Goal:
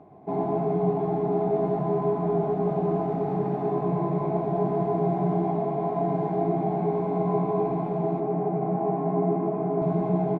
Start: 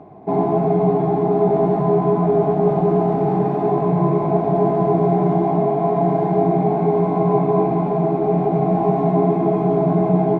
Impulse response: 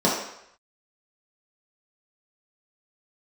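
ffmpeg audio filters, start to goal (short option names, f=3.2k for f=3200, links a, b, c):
-filter_complex "[0:a]asettb=1/sr,asplit=3[a][b][c];[a]atrim=end=8.204[d];[b]atrim=start=8.2:end=9.82,asetpts=PTS-STARTPTS,afade=t=in:d=0.004:c=qsin,afade=t=out:st=1.616:d=0.004:c=qsin,highpass=130,lowpass=2k[e];[c]atrim=start=9.816[f];[d][e]acrossfade=d=0.004:c1=hsin:c2=qsin[g];[g][f]acrossfade=d=0.004:c1=qsin:c2=hsin,asplit=2[h][i];[i]adelay=122.4,volume=-7dB,highshelf=f=4k:g=-2.76[j];[h][j]amix=inputs=2:normalize=0,volume=-9dB"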